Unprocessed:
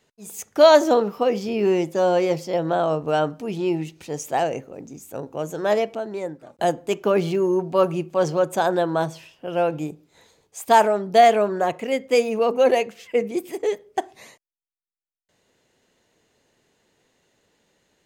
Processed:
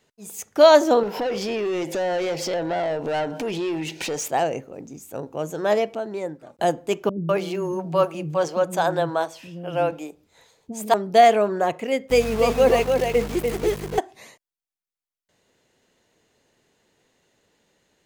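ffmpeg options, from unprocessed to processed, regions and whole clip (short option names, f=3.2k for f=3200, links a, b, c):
-filter_complex "[0:a]asettb=1/sr,asplit=3[a][b][c];[a]atrim=end=1.034[d];[b]atrim=start=1.03:end=4.28,asetpts=PTS-STARTPTS,afade=t=in:d=0.004:c=qsin,afade=t=out:st=3.246:d=0.004:c=qsin,asuperstop=centerf=1200:order=4:qfactor=3.1,acompressor=threshold=-36dB:ratio=4:attack=3.2:release=140:knee=1:detection=peak,asplit=2[e][f];[f]highpass=f=720:p=1,volume=26dB,asoftclip=type=tanh:threshold=-15.5dB[g];[e][g]amix=inputs=2:normalize=0,lowpass=f=4.9k:p=1,volume=-6dB[h];[c]atrim=start=4.276[i];[d][h]acrossfade=d=0.004:c1=hsin:c2=qsin[j];[j][i]acrossfade=d=0.004:c1=qsin:c2=hsin,asettb=1/sr,asplit=3[k][l][m];[k]atrim=end=7.094[n];[l]atrim=start=7.09:end=10.94,asetpts=PTS-STARTPTS,afade=t=in:d=0.004:c=qsin,afade=t=out:st=3.846:d=0.004:c=qsin,equalizer=f=380:t=o:w=0.29:g=-5,acrossover=split=290[o][p];[p]adelay=200[q];[o][q]amix=inputs=2:normalize=0,atrim=end_sample=169785[r];[m]atrim=start=10.936[s];[n][r]acrossfade=d=0.004:c1=hsin:c2=qsin[t];[t][s]acrossfade=d=0.004:c1=qsin:c2=hsin,asettb=1/sr,asplit=3[u][v][w];[u]atrim=end=12.104[x];[v]atrim=start=12.1:end=13.99,asetpts=PTS-STARTPTS,afade=t=in:d=0.004:c=qsin,afade=t=out:st=1.886:d=0.004:c=qsin,aeval=exprs='val(0)+0.0282*(sin(2*PI*50*n/s)+sin(2*PI*2*50*n/s)/2+sin(2*PI*3*50*n/s)/3+sin(2*PI*4*50*n/s)/4+sin(2*PI*5*50*n/s)/5)':c=same,aeval=exprs='val(0)*gte(abs(val(0)),0.0355)':c=same,aecho=1:1:294:0.596,atrim=end_sample=83349[y];[w]atrim=start=13.986[z];[x][y]acrossfade=d=0.004:c1=hsin:c2=qsin[aa];[aa][z]acrossfade=d=0.004:c1=qsin:c2=hsin"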